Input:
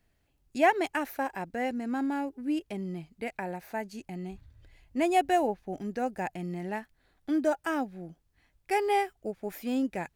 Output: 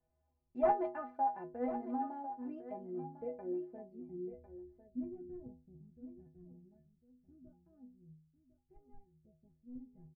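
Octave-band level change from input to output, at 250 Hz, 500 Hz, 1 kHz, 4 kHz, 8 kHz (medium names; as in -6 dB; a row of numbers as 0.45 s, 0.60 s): -12.5 dB, -9.5 dB, -9.5 dB, under -35 dB, under -30 dB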